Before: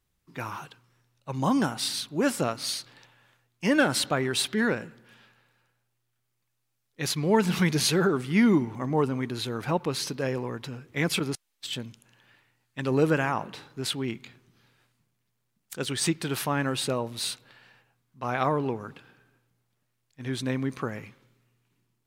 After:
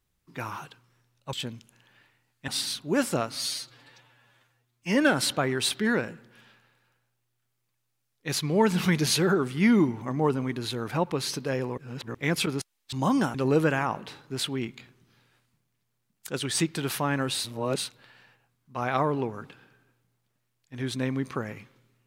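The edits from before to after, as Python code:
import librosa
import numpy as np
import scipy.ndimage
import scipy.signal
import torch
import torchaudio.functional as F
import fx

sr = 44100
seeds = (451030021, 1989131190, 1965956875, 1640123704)

y = fx.edit(x, sr, fx.swap(start_s=1.33, length_s=0.42, other_s=11.66, other_length_s=1.15),
    fx.stretch_span(start_s=2.62, length_s=1.07, factor=1.5),
    fx.reverse_span(start_s=10.51, length_s=0.37),
    fx.reverse_span(start_s=16.84, length_s=0.42), tone=tone)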